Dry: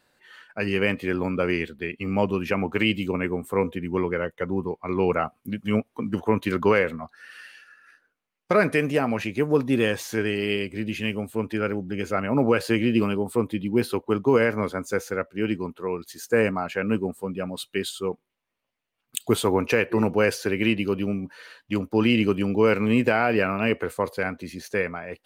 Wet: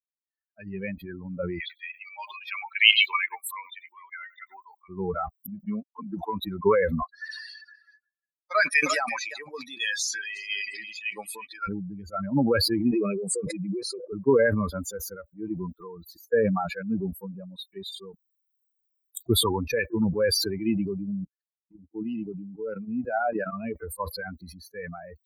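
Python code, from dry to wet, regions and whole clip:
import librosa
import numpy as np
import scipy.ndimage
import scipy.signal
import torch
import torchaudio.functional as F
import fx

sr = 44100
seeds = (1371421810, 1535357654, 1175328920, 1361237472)

y = fx.chain(x, sr, fx.highpass(hz=1100.0, slope=12),
    fx.peak_eq(hz=3500.0, db=12.0, octaves=1.9),
    fx.echo_single(ms=96, db=-18.0), at=(1.6, 4.89))
y = fx.chain(y, sr, fx.lowpass(hz=12000.0, slope=12),
    fx.low_shelf(hz=180.0, db=-11.5),
    fx.band_squash(depth_pct=100), at=(5.66, 6.42))
y = fx.chain(y, sr, fx.weighting(curve='ITU-R 468'),
    fx.echo_single(ms=351, db=-12.0), at=(7.02, 11.67))
y = fx.chain(y, sr, fx.cabinet(low_hz=170.0, low_slope=24, high_hz=8000.0, hz=(770.0, 1500.0, 2500.0, 6300.0), db=(-7, -8, 4, 5)),
    fx.fixed_phaser(hz=940.0, stages=6),
    fx.pre_swell(db_per_s=30.0), at=(12.91, 14.13))
y = fx.chain(y, sr, fx.level_steps(step_db=11),
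    fx.notch_comb(f0_hz=1100.0),
    fx.band_widen(depth_pct=40), at=(21.24, 23.53))
y = fx.bin_expand(y, sr, power=3.0)
y = fx.high_shelf(y, sr, hz=10000.0, db=-6.5)
y = fx.sustainer(y, sr, db_per_s=32.0)
y = y * librosa.db_to_amplitude(2.5)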